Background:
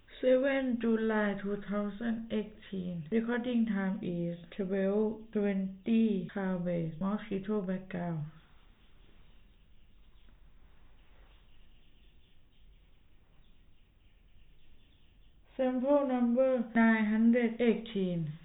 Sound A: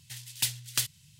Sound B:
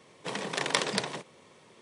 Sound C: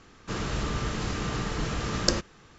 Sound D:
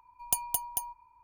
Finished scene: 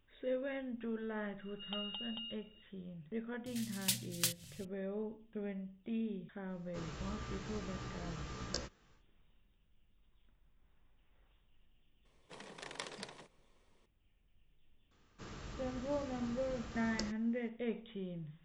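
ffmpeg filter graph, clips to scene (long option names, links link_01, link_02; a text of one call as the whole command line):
ffmpeg -i bed.wav -i cue0.wav -i cue1.wav -i cue2.wav -i cue3.wav -filter_complex "[3:a]asplit=2[link_01][link_02];[0:a]volume=-11dB[link_03];[4:a]lowpass=frequency=3200:width_type=q:width=0.5098,lowpass=frequency=3200:width_type=q:width=0.6013,lowpass=frequency=3200:width_type=q:width=0.9,lowpass=frequency=3200:width_type=q:width=2.563,afreqshift=-3800[link_04];[1:a]acompressor=mode=upward:threshold=-37dB:ratio=2.5:attack=3.2:release=140:knee=2.83:detection=peak[link_05];[link_01]asplit=2[link_06][link_07];[link_07]adelay=16,volume=-2.5dB[link_08];[link_06][link_08]amix=inputs=2:normalize=0[link_09];[link_04]atrim=end=1.23,asetpts=PTS-STARTPTS,volume=-4.5dB,afade=type=in:duration=0.004:curve=hsin,afade=type=out:start_time=1.226:duration=0.004:curve=hsin,adelay=1400[link_10];[link_05]atrim=end=1.19,asetpts=PTS-STARTPTS,volume=-6dB,afade=type=in:duration=0.004:curve=hsin,afade=type=out:start_time=1.186:duration=0.004:curve=hsin,adelay=3460[link_11];[link_09]atrim=end=2.58,asetpts=PTS-STARTPTS,volume=-17.5dB,afade=type=in:duration=0.1,afade=type=out:start_time=2.48:duration=0.1,adelay=6460[link_12];[2:a]atrim=end=1.81,asetpts=PTS-STARTPTS,volume=-17.5dB,afade=type=in:duration=0.004:curve=hsin,afade=type=out:start_time=1.806:duration=0.004:curve=hsin,adelay=12050[link_13];[link_02]atrim=end=2.58,asetpts=PTS-STARTPTS,volume=-18dB,afade=type=in:duration=0.004:curve=hsin,afade=type=out:start_time=2.576:duration=0.004:curve=hsin,adelay=14910[link_14];[link_03][link_10][link_11][link_12][link_13][link_14]amix=inputs=6:normalize=0" out.wav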